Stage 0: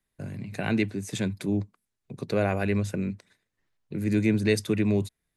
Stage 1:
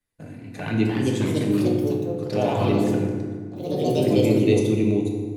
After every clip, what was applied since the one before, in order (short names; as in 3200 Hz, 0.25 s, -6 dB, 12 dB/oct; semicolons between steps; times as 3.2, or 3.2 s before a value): envelope flanger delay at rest 10.5 ms, full sweep at -23 dBFS; FDN reverb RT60 1.9 s, low-frequency decay 1.4×, high-frequency decay 0.55×, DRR -0.5 dB; echoes that change speed 0.395 s, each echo +3 st, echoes 3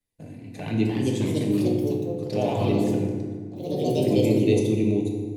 bell 1400 Hz -11 dB 0.72 oct; gain -1.5 dB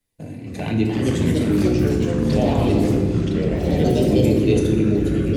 in parallel at +2 dB: compressor, threshold -29 dBFS, peak gain reduction 13.5 dB; on the sum: echoes that change speed 0.202 s, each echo -5 st, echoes 3